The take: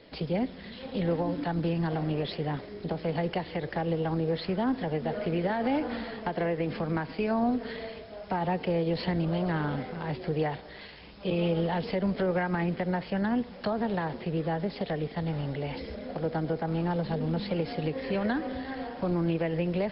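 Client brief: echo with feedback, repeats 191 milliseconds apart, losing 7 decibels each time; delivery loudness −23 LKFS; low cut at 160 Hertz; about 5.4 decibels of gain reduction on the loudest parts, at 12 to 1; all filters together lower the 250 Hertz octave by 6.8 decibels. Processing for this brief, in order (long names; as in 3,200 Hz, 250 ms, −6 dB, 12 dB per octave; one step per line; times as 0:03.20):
high-pass filter 160 Hz
parametric band 250 Hz −8.5 dB
downward compressor 12 to 1, threshold −32 dBFS
repeating echo 191 ms, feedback 45%, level −7 dB
level +14 dB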